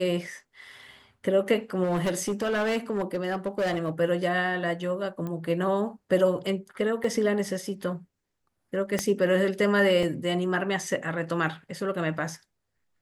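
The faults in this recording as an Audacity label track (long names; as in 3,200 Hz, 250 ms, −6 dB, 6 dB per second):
1.830000	3.900000	clipping −22.5 dBFS
5.270000	5.270000	click −23 dBFS
7.040000	7.040000	drop-out 3.8 ms
8.990000	8.990000	click −11 dBFS
10.030000	10.030000	drop-out 3.2 ms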